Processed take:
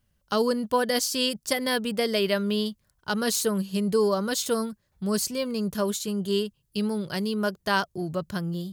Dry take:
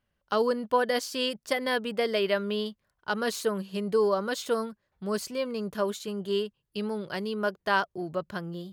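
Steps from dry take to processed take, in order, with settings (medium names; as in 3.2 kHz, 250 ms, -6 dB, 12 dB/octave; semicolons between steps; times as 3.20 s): tone controls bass +10 dB, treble +12 dB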